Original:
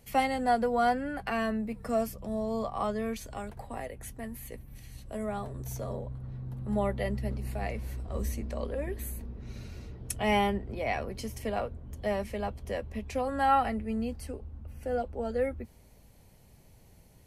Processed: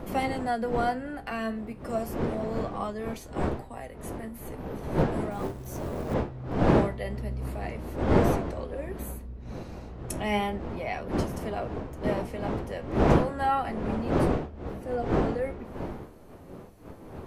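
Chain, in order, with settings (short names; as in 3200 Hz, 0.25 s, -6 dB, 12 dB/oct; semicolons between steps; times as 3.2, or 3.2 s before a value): wind noise 450 Hz -29 dBFS; flange 0.36 Hz, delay 9.8 ms, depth 8.6 ms, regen +66%; 5.31–6.14 companded quantiser 6-bit; gain +2.5 dB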